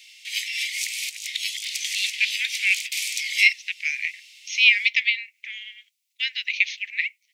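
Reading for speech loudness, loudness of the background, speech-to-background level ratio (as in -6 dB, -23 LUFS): -22.0 LUFS, -27.0 LUFS, 5.0 dB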